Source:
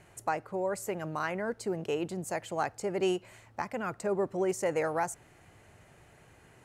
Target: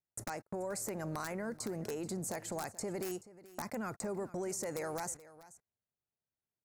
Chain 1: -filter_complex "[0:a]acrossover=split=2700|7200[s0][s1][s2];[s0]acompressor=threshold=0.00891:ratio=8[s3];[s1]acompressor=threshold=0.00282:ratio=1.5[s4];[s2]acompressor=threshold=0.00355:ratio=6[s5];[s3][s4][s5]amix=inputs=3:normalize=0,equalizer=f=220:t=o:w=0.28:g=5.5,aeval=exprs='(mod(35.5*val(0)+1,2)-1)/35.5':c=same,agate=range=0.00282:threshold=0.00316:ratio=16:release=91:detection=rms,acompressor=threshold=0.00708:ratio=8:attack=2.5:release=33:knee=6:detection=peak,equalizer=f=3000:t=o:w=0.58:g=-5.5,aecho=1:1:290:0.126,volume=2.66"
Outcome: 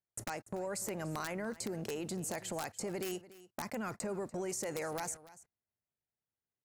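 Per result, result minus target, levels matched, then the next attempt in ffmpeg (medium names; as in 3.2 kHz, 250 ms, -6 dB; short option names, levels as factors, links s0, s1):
echo 141 ms early; 4 kHz band +3.0 dB
-filter_complex "[0:a]acrossover=split=2700|7200[s0][s1][s2];[s0]acompressor=threshold=0.00891:ratio=8[s3];[s1]acompressor=threshold=0.00282:ratio=1.5[s4];[s2]acompressor=threshold=0.00355:ratio=6[s5];[s3][s4][s5]amix=inputs=3:normalize=0,equalizer=f=220:t=o:w=0.28:g=5.5,aeval=exprs='(mod(35.5*val(0)+1,2)-1)/35.5':c=same,agate=range=0.00282:threshold=0.00316:ratio=16:release=91:detection=rms,acompressor=threshold=0.00708:ratio=8:attack=2.5:release=33:knee=6:detection=peak,equalizer=f=3000:t=o:w=0.58:g=-5.5,aecho=1:1:431:0.126,volume=2.66"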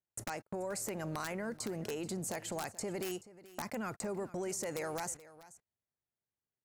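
4 kHz band +3.0 dB
-filter_complex "[0:a]acrossover=split=2700|7200[s0][s1][s2];[s0]acompressor=threshold=0.00891:ratio=8[s3];[s1]acompressor=threshold=0.00282:ratio=1.5[s4];[s2]acompressor=threshold=0.00355:ratio=6[s5];[s3][s4][s5]amix=inputs=3:normalize=0,equalizer=f=220:t=o:w=0.28:g=5.5,aeval=exprs='(mod(35.5*val(0)+1,2)-1)/35.5':c=same,agate=range=0.00282:threshold=0.00316:ratio=16:release=91:detection=rms,acompressor=threshold=0.00708:ratio=8:attack=2.5:release=33:knee=6:detection=peak,equalizer=f=3000:t=o:w=0.58:g=-15,aecho=1:1:431:0.126,volume=2.66"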